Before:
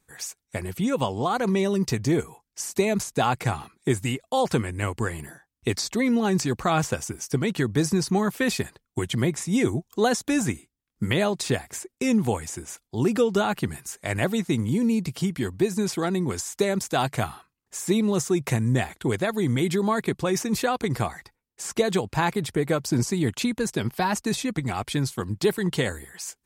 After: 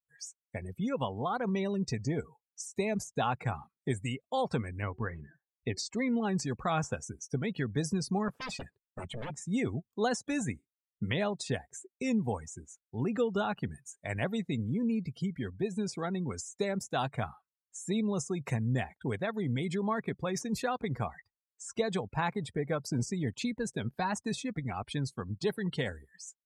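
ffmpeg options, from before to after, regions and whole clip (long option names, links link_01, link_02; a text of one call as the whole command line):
ffmpeg -i in.wav -filter_complex "[0:a]asettb=1/sr,asplit=3[link_01][link_02][link_03];[link_01]atrim=end=4.824[link_04];[link_02]atrim=start=4.82:end=5.77,asetpts=PTS-STARTPTS,afade=type=in:duration=0.004:curve=qsin,afade=type=out:start_time=0.946:duration=0.004:curve=qsin,lowpass=3500,bandreject=frequency=373.4:width_type=h:width=4,bandreject=frequency=746.8:width_type=h:width=4[link_05];[link_03]atrim=start=5.766[link_06];[link_04][link_05]acrossfade=duration=0.004:curve1=hsin:curve2=qsin[link_07];[link_07][link_06]acrossfade=duration=0.004:curve1=qsin:curve2=hsin,asettb=1/sr,asplit=3[link_08][link_09][link_10];[link_08]atrim=end=8.284[link_11];[link_09]atrim=start=8.28:end=9.47,asetpts=PTS-STARTPTS,afade=type=in:duration=0.004:curve=qsin,afade=type=out:start_time=1.186:duration=0.004:curve=qsin,highshelf=frequency=8900:gain=-2.5,aeval=exprs='0.0562*(abs(mod(val(0)/0.0562+3,4)-2)-1)':channel_layout=same[link_12];[link_10]atrim=start=9.466[link_13];[link_11][link_12]acrossfade=duration=0.004:curve1=hsin:curve2=qsin[link_14];[link_14][link_13]acrossfade=duration=0.004:curve1=qsin:curve2=hsin,afftdn=noise_reduction=27:noise_floor=-35,equalizer=frequency=340:width=5.5:gain=-8.5,volume=-7.5dB" out.wav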